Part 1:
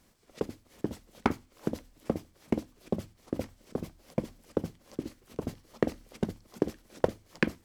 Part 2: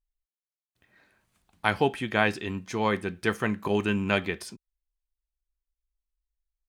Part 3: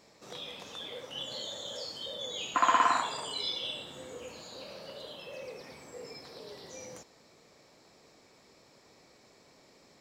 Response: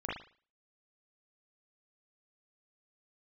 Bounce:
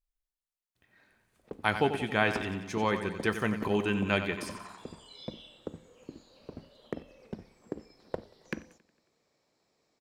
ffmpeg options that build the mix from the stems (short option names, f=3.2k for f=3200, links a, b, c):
-filter_complex "[0:a]adynamicsmooth=sensitivity=7.5:basefreq=1.4k,adelay=1100,volume=-10.5dB,asplit=3[a][b][c];[b]volume=-21dB[d];[c]volume=-22.5dB[e];[1:a]volume=-3dB,asplit=3[f][g][h];[g]volume=-10dB[i];[2:a]adelay=1750,volume=-15dB[j];[h]apad=whole_len=518298[k];[j][k]sidechaincompress=threshold=-36dB:ratio=8:attack=38:release=953[l];[3:a]atrim=start_sample=2205[m];[d][m]afir=irnorm=-1:irlink=0[n];[e][i]amix=inputs=2:normalize=0,aecho=0:1:91|182|273|364|455|546|637|728|819:1|0.57|0.325|0.185|0.106|0.0602|0.0343|0.0195|0.0111[o];[a][f][l][n][o]amix=inputs=5:normalize=0"